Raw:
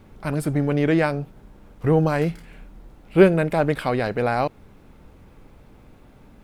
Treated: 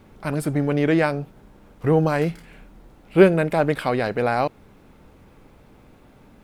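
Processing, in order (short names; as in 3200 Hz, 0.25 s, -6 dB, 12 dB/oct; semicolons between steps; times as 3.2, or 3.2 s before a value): low shelf 100 Hz -6.5 dB; gain +1 dB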